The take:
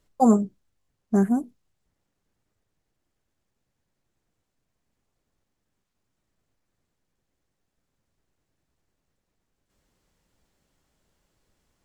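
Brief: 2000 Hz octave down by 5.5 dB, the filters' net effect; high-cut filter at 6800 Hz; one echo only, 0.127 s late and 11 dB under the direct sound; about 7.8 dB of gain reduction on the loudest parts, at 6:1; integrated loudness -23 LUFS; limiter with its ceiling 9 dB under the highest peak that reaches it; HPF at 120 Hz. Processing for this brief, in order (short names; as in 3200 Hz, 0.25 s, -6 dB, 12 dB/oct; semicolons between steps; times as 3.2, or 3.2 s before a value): HPF 120 Hz; LPF 6800 Hz; bell 2000 Hz -8 dB; compressor 6:1, threshold -22 dBFS; limiter -23.5 dBFS; echo 0.127 s -11 dB; gain +10.5 dB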